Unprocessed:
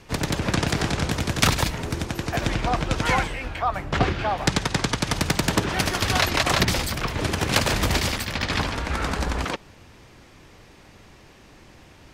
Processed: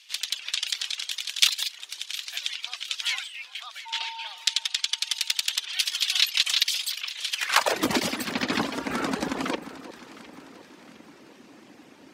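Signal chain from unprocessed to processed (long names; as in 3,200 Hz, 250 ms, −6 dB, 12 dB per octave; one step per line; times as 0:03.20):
reverb reduction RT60 0.84 s
high-pass filter sweep 3,300 Hz → 250 Hz, 0:07.32–0:07.88
0:03.85–0:04.27: steady tone 910 Hz −36 dBFS
delay that swaps between a low-pass and a high-pass 355 ms, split 1,100 Hz, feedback 66%, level −12.5 dB
level −1 dB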